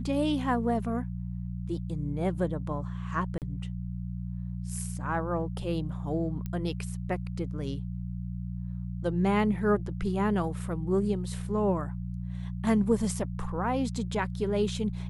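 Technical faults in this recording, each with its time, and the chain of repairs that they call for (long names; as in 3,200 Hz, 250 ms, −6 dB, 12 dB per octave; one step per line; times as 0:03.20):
mains hum 60 Hz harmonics 3 −35 dBFS
0:03.38–0:03.42: drop-out 38 ms
0:06.46: click −23 dBFS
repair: click removal
hum removal 60 Hz, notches 3
repair the gap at 0:03.38, 38 ms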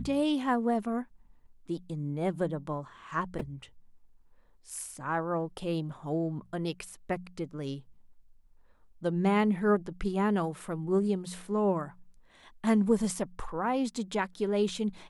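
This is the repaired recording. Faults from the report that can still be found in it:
none of them is left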